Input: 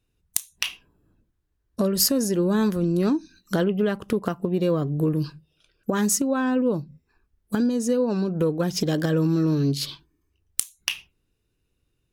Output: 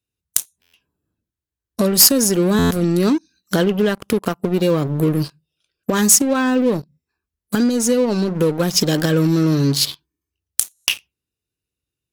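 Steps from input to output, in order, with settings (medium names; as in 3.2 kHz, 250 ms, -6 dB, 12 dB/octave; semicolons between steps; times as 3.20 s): high-pass 52 Hz 24 dB/octave; treble shelf 2.9 kHz +9 dB; waveshaping leveller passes 3; buffer glitch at 0.61/2.58/10.74 s, samples 512, times 10; trim -6 dB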